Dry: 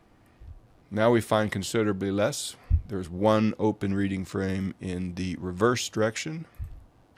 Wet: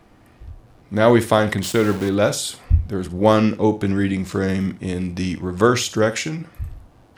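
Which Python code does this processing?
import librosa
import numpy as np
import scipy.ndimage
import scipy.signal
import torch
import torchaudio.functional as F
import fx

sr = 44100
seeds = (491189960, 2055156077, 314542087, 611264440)

y = fx.sample_gate(x, sr, floor_db=-34.0, at=(1.63, 2.09))
y = fx.room_flutter(y, sr, wall_m=10.0, rt60_s=0.26)
y = y * librosa.db_to_amplitude(7.5)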